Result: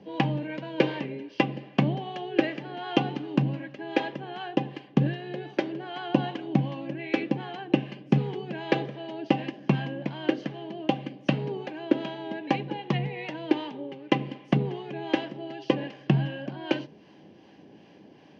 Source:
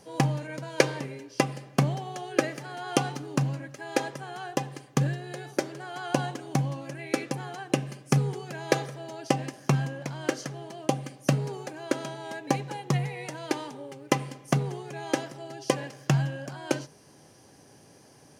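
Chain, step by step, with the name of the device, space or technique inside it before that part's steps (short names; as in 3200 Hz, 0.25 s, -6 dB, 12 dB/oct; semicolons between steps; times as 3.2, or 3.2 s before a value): guitar amplifier with harmonic tremolo (harmonic tremolo 2.6 Hz, depth 50%, crossover 630 Hz; soft clip -15 dBFS, distortion -15 dB; speaker cabinet 92–3600 Hz, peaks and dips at 120 Hz -7 dB, 200 Hz +9 dB, 320 Hz +7 dB, 1300 Hz -8 dB, 2900 Hz +6 dB); gain +3.5 dB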